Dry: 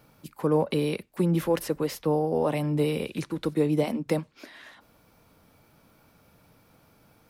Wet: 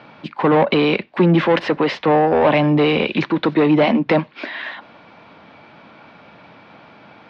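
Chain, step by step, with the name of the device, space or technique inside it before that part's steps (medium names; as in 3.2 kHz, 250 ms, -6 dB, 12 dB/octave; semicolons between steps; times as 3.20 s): overdrive pedal into a guitar cabinet (overdrive pedal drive 20 dB, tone 2.7 kHz, clips at -11.5 dBFS; cabinet simulation 87–3800 Hz, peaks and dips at 210 Hz +3 dB, 470 Hz -5 dB, 1.3 kHz -4 dB); trim +8 dB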